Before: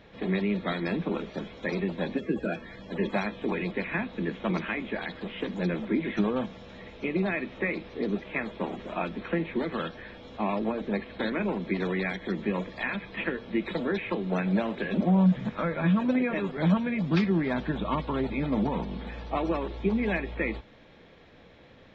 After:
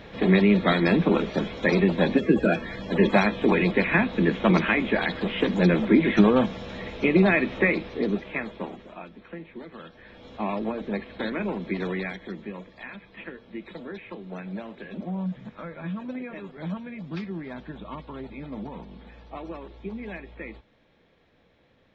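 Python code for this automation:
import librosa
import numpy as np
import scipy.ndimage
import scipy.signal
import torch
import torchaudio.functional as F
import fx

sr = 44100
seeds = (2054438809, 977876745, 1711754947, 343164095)

y = fx.gain(x, sr, db=fx.line((7.54, 9.0), (8.62, -1.5), (9.05, -11.0), (9.83, -11.0), (10.26, 0.0), (11.93, 0.0), (12.58, -9.0)))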